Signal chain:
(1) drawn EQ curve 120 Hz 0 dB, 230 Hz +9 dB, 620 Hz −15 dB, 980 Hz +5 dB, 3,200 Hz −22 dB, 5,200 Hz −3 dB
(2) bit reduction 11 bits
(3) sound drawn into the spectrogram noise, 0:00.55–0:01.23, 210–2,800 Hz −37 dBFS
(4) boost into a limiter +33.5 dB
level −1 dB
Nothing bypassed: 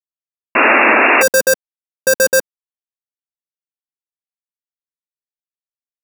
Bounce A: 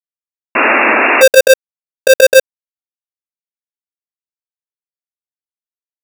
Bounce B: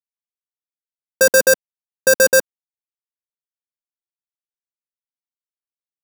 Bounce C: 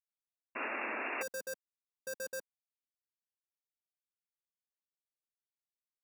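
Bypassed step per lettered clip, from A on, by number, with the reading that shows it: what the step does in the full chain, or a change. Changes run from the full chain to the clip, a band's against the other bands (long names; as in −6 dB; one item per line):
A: 1, 500 Hz band +7.0 dB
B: 3, 1 kHz band −21.0 dB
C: 4, change in crest factor +3.5 dB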